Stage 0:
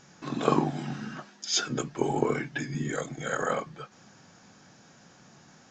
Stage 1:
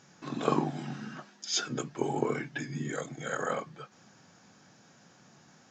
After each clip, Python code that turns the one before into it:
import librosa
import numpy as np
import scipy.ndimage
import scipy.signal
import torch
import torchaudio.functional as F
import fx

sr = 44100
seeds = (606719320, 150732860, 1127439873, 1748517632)

y = scipy.signal.sosfilt(scipy.signal.butter(2, 77.0, 'highpass', fs=sr, output='sos'), x)
y = F.gain(torch.from_numpy(y), -3.5).numpy()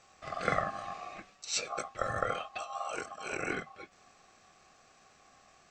y = x * np.sin(2.0 * np.pi * 940.0 * np.arange(len(x)) / sr)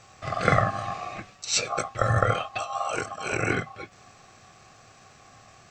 y = fx.peak_eq(x, sr, hz=110.0, db=13.5, octaves=0.76)
y = F.gain(torch.from_numpy(y), 8.5).numpy()